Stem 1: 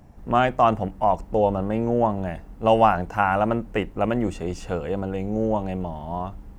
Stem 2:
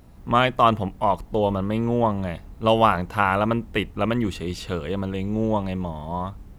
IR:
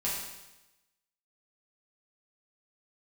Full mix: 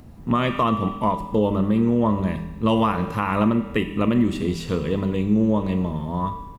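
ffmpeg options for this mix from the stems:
-filter_complex "[0:a]acompressor=mode=upward:threshold=-39dB:ratio=2.5,volume=-12.5dB,asplit=2[link_01][link_02];[link_02]volume=-3dB[link_03];[1:a]equalizer=frequency=180:width=0.61:gain=7,volume=-1,adelay=1.2,volume=-2.5dB,asplit=2[link_04][link_05];[link_05]volume=-10.5dB[link_06];[2:a]atrim=start_sample=2205[link_07];[link_03][link_06]amix=inputs=2:normalize=0[link_08];[link_08][link_07]afir=irnorm=-1:irlink=0[link_09];[link_01][link_04][link_09]amix=inputs=3:normalize=0,alimiter=limit=-10dB:level=0:latency=1:release=195"

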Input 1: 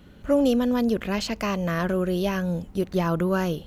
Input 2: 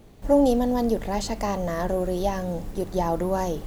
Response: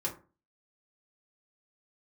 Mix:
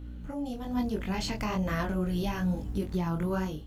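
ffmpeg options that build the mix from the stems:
-filter_complex "[0:a]aeval=exprs='val(0)+0.0224*(sin(2*PI*60*n/s)+sin(2*PI*2*60*n/s)/2+sin(2*PI*3*60*n/s)/3+sin(2*PI*4*60*n/s)/4+sin(2*PI*5*60*n/s)/5)':channel_layout=same,volume=-3.5dB[link_01];[1:a]lowshelf=frequency=460:gain=4.5,flanger=delay=20:depth=2.4:speed=2.4,volume=-18dB,asplit=2[link_02][link_03];[link_03]apad=whole_len=161675[link_04];[link_01][link_04]sidechaincompress=threshold=-47dB:ratio=8:attack=8.6:release=1440[link_05];[link_05][link_02]amix=inputs=2:normalize=0,dynaudnorm=framelen=240:gausssize=5:maxgain=11dB,flanger=delay=19.5:depth=4.6:speed=1.1,alimiter=limit=-20.5dB:level=0:latency=1:release=139"

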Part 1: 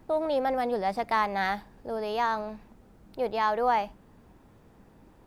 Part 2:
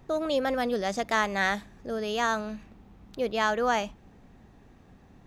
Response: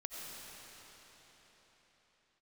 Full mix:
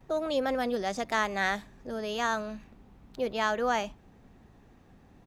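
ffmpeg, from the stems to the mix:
-filter_complex "[0:a]deesser=0.85,alimiter=level_in=1.5dB:limit=-24dB:level=0:latency=1,volume=-1.5dB,volume=-11dB[link_01];[1:a]adelay=7.5,volume=-2.5dB[link_02];[link_01][link_02]amix=inputs=2:normalize=0"

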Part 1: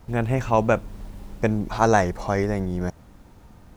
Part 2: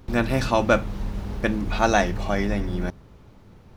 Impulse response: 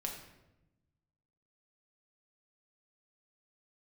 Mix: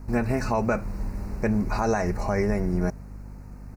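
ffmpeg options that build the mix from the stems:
-filter_complex "[0:a]aeval=exprs='val(0)+0.0112*(sin(2*PI*50*n/s)+sin(2*PI*2*50*n/s)/2+sin(2*PI*3*50*n/s)/3+sin(2*PI*4*50*n/s)/4+sin(2*PI*5*50*n/s)/5)':channel_layout=same,volume=-0.5dB[link_01];[1:a]adelay=1.4,volume=-5dB[link_02];[link_01][link_02]amix=inputs=2:normalize=0,asuperstop=centerf=3300:order=4:qfactor=1.8,alimiter=limit=-14dB:level=0:latency=1:release=130"

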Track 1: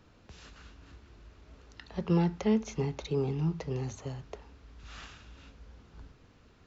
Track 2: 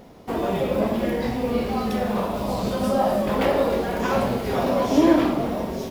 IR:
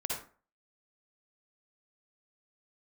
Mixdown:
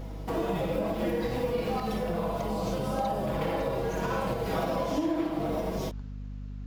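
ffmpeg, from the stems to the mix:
-filter_complex "[0:a]acompressor=threshold=-34dB:ratio=6,volume=0dB,asplit=2[link_01][link_02];[1:a]aecho=1:1:6.2:0.68,volume=-2.5dB,asplit=2[link_03][link_04];[link_04]volume=-10.5dB[link_05];[link_02]apad=whole_len=260708[link_06];[link_03][link_06]sidechaincompress=threshold=-53dB:ratio=8:attack=5.7:release=203[link_07];[2:a]atrim=start_sample=2205[link_08];[link_05][link_08]afir=irnorm=-1:irlink=0[link_09];[link_01][link_07][link_09]amix=inputs=3:normalize=0,aeval=exprs='val(0)+0.0141*(sin(2*PI*50*n/s)+sin(2*PI*2*50*n/s)/2+sin(2*PI*3*50*n/s)/3+sin(2*PI*4*50*n/s)/4+sin(2*PI*5*50*n/s)/5)':channel_layout=same,acompressor=threshold=-25dB:ratio=12"

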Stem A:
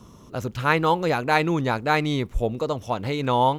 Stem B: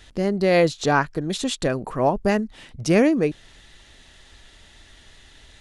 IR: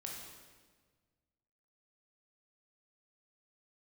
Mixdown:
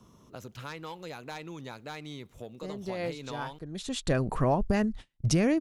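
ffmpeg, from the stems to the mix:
-filter_complex "[0:a]aeval=exprs='0.631*sin(PI/2*1.78*val(0)/0.631)':channel_layout=same,acrossover=split=96|2800[link_01][link_02][link_03];[link_01]acompressor=threshold=-48dB:ratio=4[link_04];[link_02]acompressor=threshold=-22dB:ratio=4[link_05];[link_03]acompressor=threshold=-28dB:ratio=4[link_06];[link_04][link_05][link_06]amix=inputs=3:normalize=0,volume=-18.5dB,asplit=3[link_07][link_08][link_09];[link_08]volume=-24dB[link_10];[1:a]agate=range=-39dB:threshold=-37dB:ratio=16:detection=peak,asubboost=boost=3:cutoff=210,adelay=2450,volume=0.5dB[link_11];[link_09]apad=whole_len=355116[link_12];[link_11][link_12]sidechaincompress=threshold=-55dB:ratio=16:attack=23:release=672[link_13];[2:a]atrim=start_sample=2205[link_14];[link_10][link_14]afir=irnorm=-1:irlink=0[link_15];[link_07][link_13][link_15]amix=inputs=3:normalize=0,alimiter=limit=-16dB:level=0:latency=1:release=381"

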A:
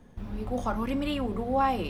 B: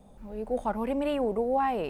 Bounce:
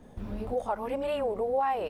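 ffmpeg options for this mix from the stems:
ffmpeg -i stem1.wav -i stem2.wav -filter_complex "[0:a]acompressor=threshold=-32dB:ratio=6,volume=0dB[link_01];[1:a]highpass=frequency=450:width=0.5412,highpass=frequency=450:width=1.3066,volume=-1,adelay=26,volume=-2dB,asplit=2[link_02][link_03];[link_03]apad=whole_len=83562[link_04];[link_01][link_04]sidechaincompress=threshold=-37dB:ratio=8:attack=16:release=518[link_05];[link_05][link_02]amix=inputs=2:normalize=0,equalizer=frequency=370:width_type=o:width=2.1:gain=3.5" out.wav

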